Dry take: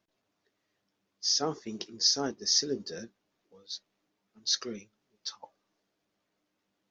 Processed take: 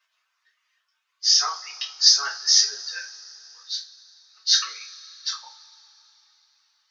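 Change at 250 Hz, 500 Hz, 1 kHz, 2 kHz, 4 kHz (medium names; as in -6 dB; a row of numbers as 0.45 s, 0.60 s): under -30 dB, under -15 dB, +8.0 dB, +15.0 dB, +10.5 dB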